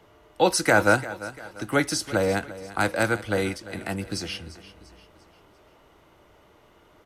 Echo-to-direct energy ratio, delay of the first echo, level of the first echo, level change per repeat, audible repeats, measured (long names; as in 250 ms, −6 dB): −15.0 dB, 345 ms, −16.0 dB, −7.5 dB, 3